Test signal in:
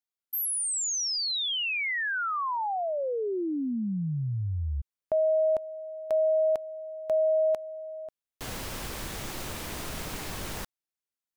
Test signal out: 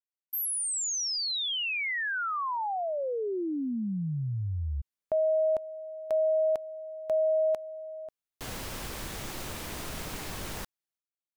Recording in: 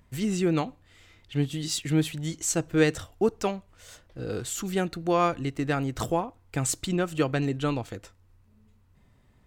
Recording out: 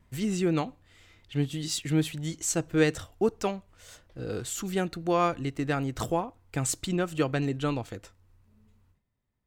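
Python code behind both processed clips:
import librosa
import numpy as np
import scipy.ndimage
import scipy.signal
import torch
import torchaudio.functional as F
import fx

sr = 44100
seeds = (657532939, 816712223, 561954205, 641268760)

y = fx.gate_hold(x, sr, open_db=-50.0, close_db=-55.0, hold_ms=276.0, range_db=-19, attack_ms=1.1, release_ms=128.0)
y = y * 10.0 ** (-1.5 / 20.0)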